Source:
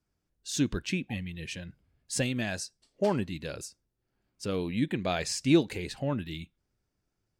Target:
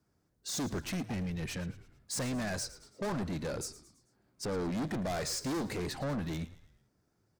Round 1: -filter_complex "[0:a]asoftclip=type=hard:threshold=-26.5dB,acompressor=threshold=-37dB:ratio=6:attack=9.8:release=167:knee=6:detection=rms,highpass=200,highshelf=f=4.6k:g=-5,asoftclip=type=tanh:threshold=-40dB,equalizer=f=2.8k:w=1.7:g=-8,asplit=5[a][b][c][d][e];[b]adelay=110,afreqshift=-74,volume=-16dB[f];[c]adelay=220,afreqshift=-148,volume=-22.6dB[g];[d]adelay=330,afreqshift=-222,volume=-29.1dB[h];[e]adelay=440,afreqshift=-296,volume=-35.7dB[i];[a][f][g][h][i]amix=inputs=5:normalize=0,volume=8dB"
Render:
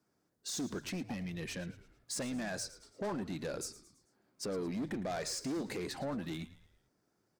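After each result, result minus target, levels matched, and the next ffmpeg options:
compressor: peak gain reduction +8.5 dB; hard clip: distortion +9 dB; 125 Hz band -3.5 dB
-filter_complex "[0:a]asoftclip=type=hard:threshold=-18.5dB,highpass=200,highshelf=f=4.6k:g=-5,asoftclip=type=tanh:threshold=-40dB,equalizer=f=2.8k:w=1.7:g=-8,asplit=5[a][b][c][d][e];[b]adelay=110,afreqshift=-74,volume=-16dB[f];[c]adelay=220,afreqshift=-148,volume=-22.6dB[g];[d]adelay=330,afreqshift=-222,volume=-29.1dB[h];[e]adelay=440,afreqshift=-296,volume=-35.7dB[i];[a][f][g][h][i]amix=inputs=5:normalize=0,volume=8dB"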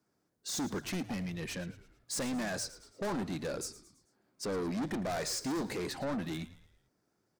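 125 Hz band -4.0 dB
-filter_complex "[0:a]asoftclip=type=hard:threshold=-18.5dB,highpass=80,highshelf=f=4.6k:g=-5,asoftclip=type=tanh:threshold=-40dB,equalizer=f=2.8k:w=1.7:g=-8,asplit=5[a][b][c][d][e];[b]adelay=110,afreqshift=-74,volume=-16dB[f];[c]adelay=220,afreqshift=-148,volume=-22.6dB[g];[d]adelay=330,afreqshift=-222,volume=-29.1dB[h];[e]adelay=440,afreqshift=-296,volume=-35.7dB[i];[a][f][g][h][i]amix=inputs=5:normalize=0,volume=8dB"

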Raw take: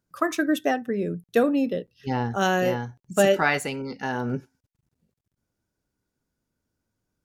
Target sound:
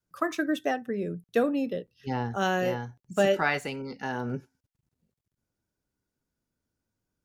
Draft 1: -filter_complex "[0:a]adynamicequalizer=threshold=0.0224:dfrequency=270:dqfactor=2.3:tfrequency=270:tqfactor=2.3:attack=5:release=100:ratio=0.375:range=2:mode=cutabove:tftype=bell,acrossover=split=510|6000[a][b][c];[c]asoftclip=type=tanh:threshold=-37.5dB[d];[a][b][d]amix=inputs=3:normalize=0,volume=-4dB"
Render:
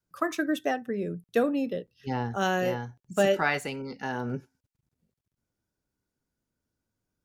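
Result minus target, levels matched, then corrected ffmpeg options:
soft clip: distortion -4 dB
-filter_complex "[0:a]adynamicequalizer=threshold=0.0224:dfrequency=270:dqfactor=2.3:tfrequency=270:tqfactor=2.3:attack=5:release=100:ratio=0.375:range=2:mode=cutabove:tftype=bell,acrossover=split=510|6000[a][b][c];[c]asoftclip=type=tanh:threshold=-45dB[d];[a][b][d]amix=inputs=3:normalize=0,volume=-4dB"

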